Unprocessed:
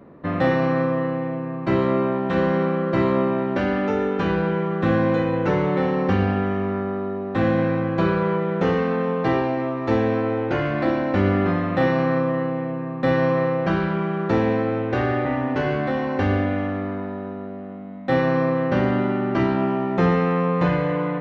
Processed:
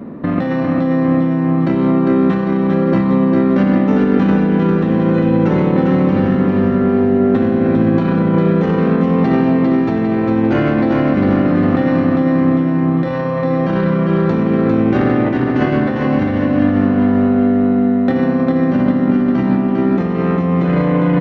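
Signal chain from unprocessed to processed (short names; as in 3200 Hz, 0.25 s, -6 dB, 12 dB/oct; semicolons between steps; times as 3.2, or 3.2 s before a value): bell 230 Hz +11.5 dB 0.78 oct; limiter -16 dBFS, peak gain reduction 13.5 dB; negative-ratio compressor -24 dBFS, ratio -0.5; on a send: feedback echo 0.401 s, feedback 56%, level -4 dB; on the sum: gain +8.5 dB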